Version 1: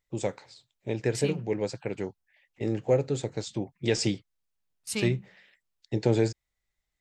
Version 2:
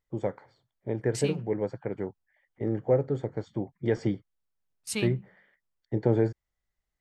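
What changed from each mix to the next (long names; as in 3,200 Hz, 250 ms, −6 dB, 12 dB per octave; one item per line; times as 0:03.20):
first voice: add Savitzky-Golay smoothing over 41 samples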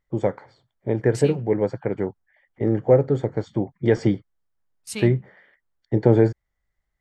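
first voice +8.0 dB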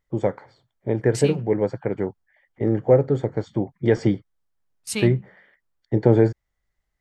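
second voice +4.5 dB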